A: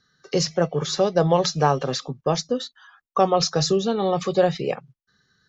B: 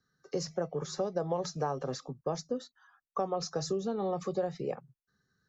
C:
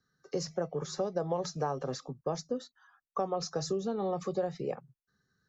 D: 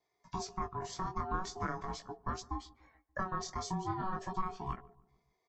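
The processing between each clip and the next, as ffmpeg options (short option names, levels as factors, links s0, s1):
-filter_complex "[0:a]equalizer=f=3100:t=o:w=1.4:g=-13,acrossover=split=210|1300[s0][s1][s2];[s0]alimiter=level_in=1.78:limit=0.0631:level=0:latency=1,volume=0.562[s3];[s3][s1][s2]amix=inputs=3:normalize=0,acompressor=threshold=0.1:ratio=4,volume=0.398"
-af anull
-filter_complex "[0:a]aeval=exprs='val(0)*sin(2*PI*560*n/s)':c=same,flanger=delay=16:depth=7.7:speed=0.43,asplit=2[s0][s1];[s1]adelay=145,lowpass=f=1000:p=1,volume=0.0944,asplit=2[s2][s3];[s3]adelay=145,lowpass=f=1000:p=1,volume=0.54,asplit=2[s4][s5];[s5]adelay=145,lowpass=f=1000:p=1,volume=0.54,asplit=2[s6][s7];[s7]adelay=145,lowpass=f=1000:p=1,volume=0.54[s8];[s0][s2][s4][s6][s8]amix=inputs=5:normalize=0,volume=1.19"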